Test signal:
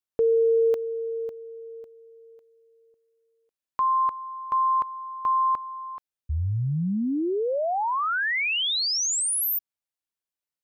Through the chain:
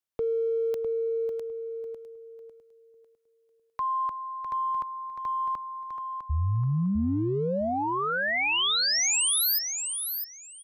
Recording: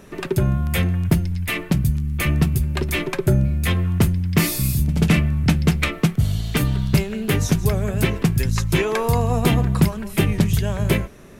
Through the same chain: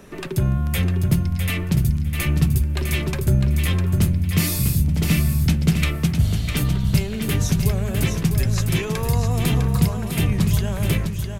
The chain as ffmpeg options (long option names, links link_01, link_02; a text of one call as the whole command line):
ffmpeg -i in.wav -filter_complex "[0:a]acrossover=split=190|2800[link_01][link_02][link_03];[link_02]acompressor=threshold=-28dB:ratio=3:attack=0.19:release=29:knee=2.83:detection=peak[link_04];[link_01][link_04][link_03]amix=inputs=3:normalize=0,asplit=2[link_05][link_06];[link_06]aecho=0:1:654|1308|1962:0.473|0.0899|0.0171[link_07];[link_05][link_07]amix=inputs=2:normalize=0" out.wav